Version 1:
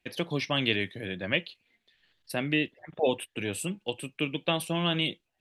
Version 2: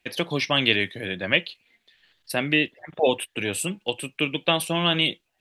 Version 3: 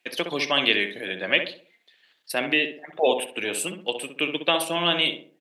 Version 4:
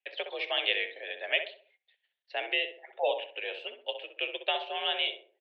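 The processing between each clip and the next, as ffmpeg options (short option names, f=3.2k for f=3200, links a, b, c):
-af "lowshelf=f=430:g=-5.5,volume=7.5dB"
-filter_complex "[0:a]highpass=300,asplit=2[a][b];[b]adelay=64,lowpass=f=1.4k:p=1,volume=-6dB,asplit=2[c][d];[d]adelay=64,lowpass=f=1.4k:p=1,volume=0.43,asplit=2[e][f];[f]adelay=64,lowpass=f=1.4k:p=1,volume=0.43,asplit=2[g][h];[h]adelay=64,lowpass=f=1.4k:p=1,volume=0.43,asplit=2[i][j];[j]adelay=64,lowpass=f=1.4k:p=1,volume=0.43[k];[a][c][e][g][i][k]amix=inputs=6:normalize=0"
-af "equalizer=f=1.1k:w=2.6:g=-11,agate=range=-13dB:threshold=-58dB:ratio=16:detection=peak,highpass=f=400:t=q:w=0.5412,highpass=f=400:t=q:w=1.307,lowpass=f=3.5k:t=q:w=0.5176,lowpass=f=3.5k:t=q:w=0.7071,lowpass=f=3.5k:t=q:w=1.932,afreqshift=58,volume=-6dB"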